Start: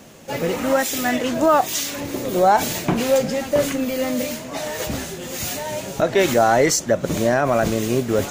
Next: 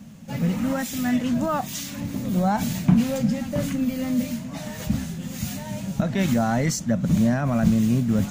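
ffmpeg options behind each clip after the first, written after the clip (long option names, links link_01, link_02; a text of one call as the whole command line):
ffmpeg -i in.wav -af "lowshelf=frequency=280:width_type=q:width=3:gain=10,volume=-8.5dB" out.wav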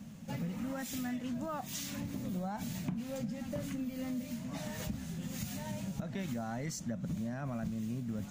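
ffmpeg -i in.wav -af "acompressor=threshold=-30dB:ratio=6,volume=-5.5dB" out.wav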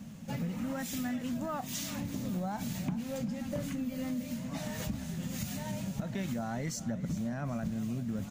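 ffmpeg -i in.wav -af "aecho=1:1:390|780|1170:0.178|0.0676|0.0257,volume=2.5dB" out.wav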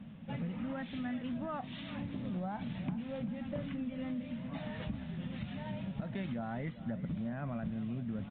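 ffmpeg -i in.wav -af "aresample=8000,aresample=44100,volume=-3dB" out.wav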